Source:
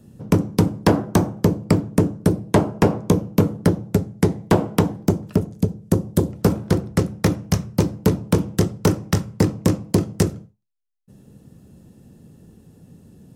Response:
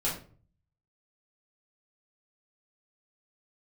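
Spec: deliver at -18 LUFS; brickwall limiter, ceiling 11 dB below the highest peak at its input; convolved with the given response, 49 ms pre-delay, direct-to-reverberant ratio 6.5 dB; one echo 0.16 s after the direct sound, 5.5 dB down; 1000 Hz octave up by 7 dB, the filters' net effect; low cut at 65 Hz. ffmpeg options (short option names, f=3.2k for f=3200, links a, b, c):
-filter_complex "[0:a]highpass=65,equalizer=f=1k:t=o:g=8.5,alimiter=limit=-10dB:level=0:latency=1,aecho=1:1:160:0.531,asplit=2[a][b];[1:a]atrim=start_sample=2205,adelay=49[c];[b][c]afir=irnorm=-1:irlink=0,volume=-13.5dB[d];[a][d]amix=inputs=2:normalize=0,volume=3.5dB"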